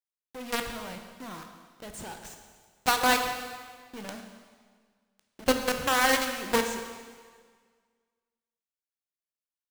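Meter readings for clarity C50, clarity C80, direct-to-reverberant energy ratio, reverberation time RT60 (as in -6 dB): 6.5 dB, 7.5 dB, 5.0 dB, 1.7 s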